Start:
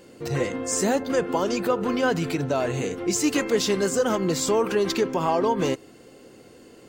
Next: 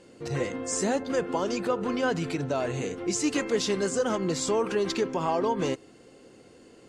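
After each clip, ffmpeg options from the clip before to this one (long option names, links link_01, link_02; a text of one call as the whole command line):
ffmpeg -i in.wav -af "lowpass=frequency=10000:width=0.5412,lowpass=frequency=10000:width=1.3066,volume=-4dB" out.wav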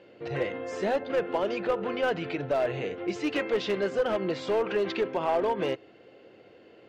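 ffmpeg -i in.wav -af "highpass=110,equalizer=frequency=160:width_type=q:width=4:gain=-7,equalizer=frequency=250:width_type=q:width=4:gain=-8,equalizer=frequency=620:width_type=q:width=4:gain=5,equalizer=frequency=1100:width_type=q:width=4:gain=-4,lowpass=frequency=3100:width=0.5412,lowpass=frequency=3100:width=1.3066,crystalizer=i=2:c=0,aeval=exprs='clip(val(0),-1,0.0891)':channel_layout=same" out.wav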